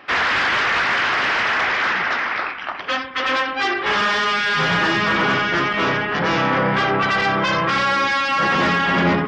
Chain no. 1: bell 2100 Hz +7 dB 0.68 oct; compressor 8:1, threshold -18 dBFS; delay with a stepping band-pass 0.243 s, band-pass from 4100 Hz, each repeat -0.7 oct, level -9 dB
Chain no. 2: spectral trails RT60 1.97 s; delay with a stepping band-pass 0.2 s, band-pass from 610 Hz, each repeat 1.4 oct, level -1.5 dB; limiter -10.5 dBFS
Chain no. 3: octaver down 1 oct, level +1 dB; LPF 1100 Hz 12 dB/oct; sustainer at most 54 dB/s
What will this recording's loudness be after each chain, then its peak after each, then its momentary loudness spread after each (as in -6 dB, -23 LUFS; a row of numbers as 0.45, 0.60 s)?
-19.5, -17.0, -22.5 LUFS; -10.0, -10.5, -6.5 dBFS; 2, 2, 7 LU